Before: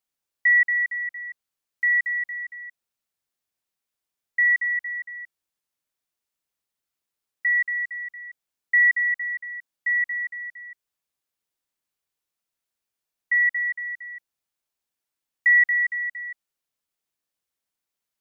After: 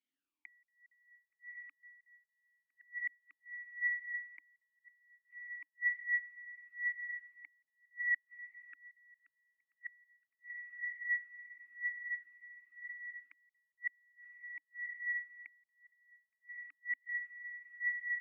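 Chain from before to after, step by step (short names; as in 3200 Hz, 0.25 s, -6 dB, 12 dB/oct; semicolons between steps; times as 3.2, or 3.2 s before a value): diffused feedback echo 0.645 s, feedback 73%, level -9 dB; flipped gate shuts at -26 dBFS, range -39 dB; vowel sweep i-u 1 Hz; gain +8.5 dB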